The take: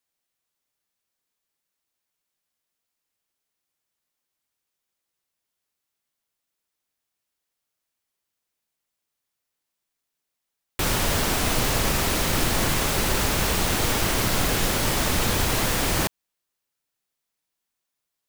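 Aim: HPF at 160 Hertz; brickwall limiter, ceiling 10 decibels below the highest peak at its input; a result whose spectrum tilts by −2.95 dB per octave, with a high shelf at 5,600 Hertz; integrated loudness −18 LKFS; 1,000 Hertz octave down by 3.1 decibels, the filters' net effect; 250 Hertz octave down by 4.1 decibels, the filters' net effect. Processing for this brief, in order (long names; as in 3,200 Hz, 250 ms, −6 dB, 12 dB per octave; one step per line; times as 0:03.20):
high-pass filter 160 Hz
parametric band 250 Hz −4 dB
parametric band 1,000 Hz −3.5 dB
high-shelf EQ 5,600 Hz −7 dB
level +14.5 dB
brickwall limiter −10 dBFS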